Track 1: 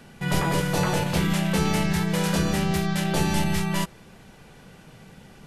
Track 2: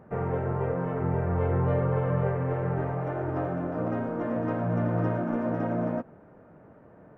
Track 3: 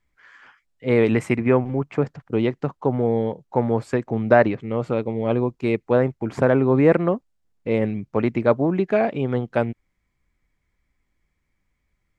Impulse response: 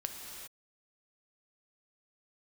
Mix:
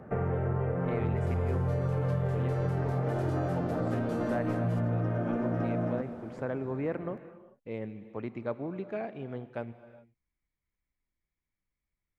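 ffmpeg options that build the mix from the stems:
-filter_complex "[0:a]acompressor=threshold=0.0316:ratio=2,adelay=950,volume=0.15[s0];[1:a]bandreject=f=970:w=8,acrossover=split=150|3000[s1][s2][s3];[s2]acompressor=threshold=0.0178:ratio=2[s4];[s1][s4][s3]amix=inputs=3:normalize=0,volume=1.26,asplit=2[s5][s6];[s6]volume=0.376[s7];[2:a]volume=0.112,asplit=2[s8][s9];[s9]volume=0.447[s10];[3:a]atrim=start_sample=2205[s11];[s7][s10]amix=inputs=2:normalize=0[s12];[s12][s11]afir=irnorm=-1:irlink=0[s13];[s0][s5][s8][s13]amix=inputs=4:normalize=0,highshelf=f=7400:g=-5,acompressor=threshold=0.0501:ratio=6"

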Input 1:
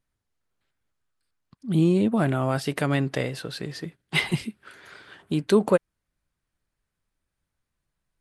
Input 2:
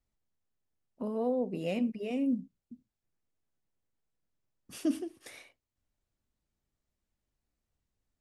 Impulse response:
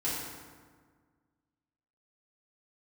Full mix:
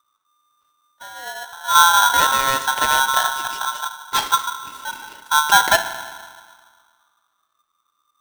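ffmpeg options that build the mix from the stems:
-filter_complex "[0:a]lowshelf=f=300:g=10.5,volume=0.891,asplit=2[s0][s1];[s1]volume=0.188[s2];[1:a]equalizer=f=1600:t=o:w=1.2:g=-12.5,volume=0.75,asplit=2[s3][s4];[s4]volume=0.158[s5];[2:a]atrim=start_sample=2205[s6];[s2][s5]amix=inputs=2:normalize=0[s7];[s7][s6]afir=irnorm=-1:irlink=0[s8];[s0][s3][s8]amix=inputs=3:normalize=0,aeval=exprs='val(0)*sgn(sin(2*PI*1200*n/s))':c=same"

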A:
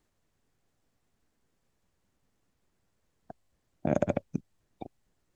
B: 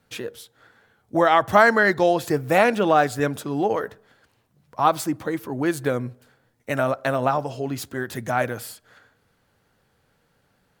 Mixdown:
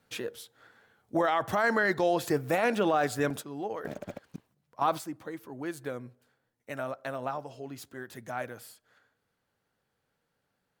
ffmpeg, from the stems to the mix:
-filter_complex "[0:a]alimiter=limit=0.075:level=0:latency=1:release=95,acrusher=bits=7:mix=0:aa=0.5,volume=0.668,asplit=2[s0][s1];[1:a]volume=0.668[s2];[s1]apad=whole_len=476291[s3];[s2][s3]sidechaingate=range=0.355:threshold=0.001:ratio=16:detection=peak[s4];[s0][s4]amix=inputs=2:normalize=0,lowshelf=f=120:g=-7,alimiter=limit=0.15:level=0:latency=1:release=15"

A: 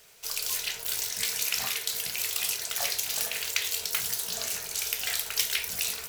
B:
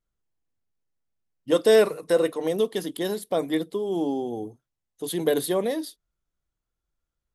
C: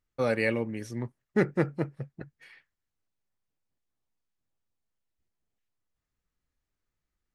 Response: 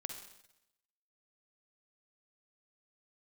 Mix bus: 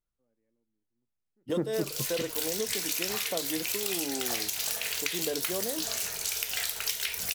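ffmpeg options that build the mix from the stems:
-filter_complex "[0:a]adelay=1500,volume=1.19[s0];[1:a]volume=0.501,asplit=2[s1][s2];[2:a]lowpass=1200,equalizer=f=280:t=o:w=1.1:g=10,volume=1.33[s3];[s2]apad=whole_len=323782[s4];[s3][s4]sidechaingate=range=0.00126:threshold=0.00708:ratio=16:detection=peak[s5];[s0][s1][s5]amix=inputs=3:normalize=0,acompressor=threshold=0.0447:ratio=6"

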